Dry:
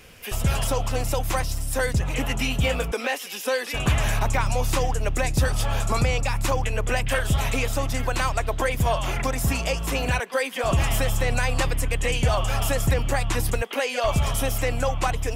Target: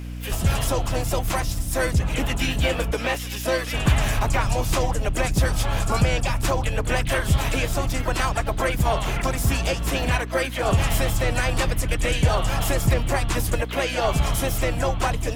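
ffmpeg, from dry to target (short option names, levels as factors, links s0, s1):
-filter_complex "[0:a]asplit=4[s0][s1][s2][s3];[s1]asetrate=29433,aresample=44100,atempo=1.49831,volume=0.355[s4];[s2]asetrate=52444,aresample=44100,atempo=0.840896,volume=0.141[s5];[s3]asetrate=55563,aresample=44100,atempo=0.793701,volume=0.355[s6];[s0][s4][s5][s6]amix=inputs=4:normalize=0,aeval=exprs='val(0)+0.0282*(sin(2*PI*60*n/s)+sin(2*PI*2*60*n/s)/2+sin(2*PI*3*60*n/s)/3+sin(2*PI*4*60*n/s)/4+sin(2*PI*5*60*n/s)/5)':c=same"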